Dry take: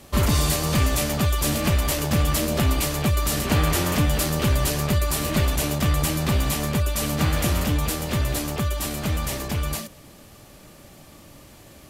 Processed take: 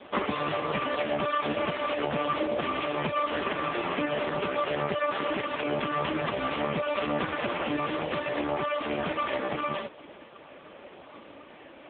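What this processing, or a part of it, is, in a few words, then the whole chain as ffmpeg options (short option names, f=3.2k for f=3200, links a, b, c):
voicemail: -af "highpass=350,lowpass=3.1k,acompressor=threshold=-30dB:ratio=8,volume=8.5dB" -ar 8000 -c:a libopencore_amrnb -b:a 4750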